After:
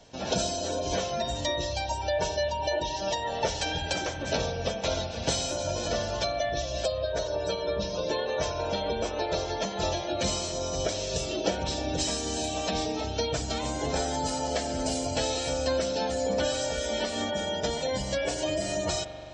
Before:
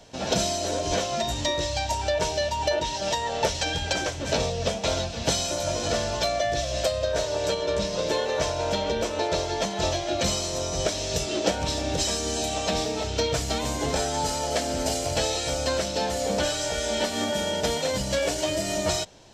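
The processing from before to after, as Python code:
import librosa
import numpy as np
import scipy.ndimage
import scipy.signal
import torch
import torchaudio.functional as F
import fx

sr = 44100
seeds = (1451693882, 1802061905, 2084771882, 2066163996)

y = fx.spec_gate(x, sr, threshold_db=-25, keep='strong')
y = fx.rev_spring(y, sr, rt60_s=3.1, pass_ms=(42,), chirp_ms=65, drr_db=8.5)
y = F.gain(torch.from_numpy(y), -3.5).numpy()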